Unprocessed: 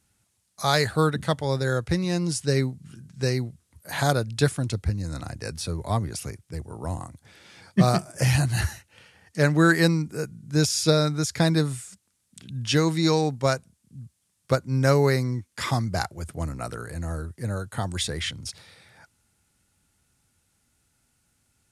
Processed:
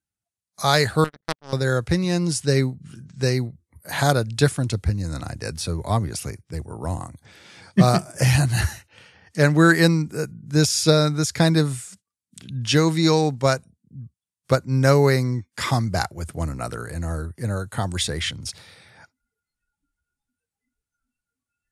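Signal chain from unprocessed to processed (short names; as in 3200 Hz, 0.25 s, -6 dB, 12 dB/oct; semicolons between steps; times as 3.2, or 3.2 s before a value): 1.04–1.53 power-law curve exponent 3; spectral noise reduction 25 dB; gain +3.5 dB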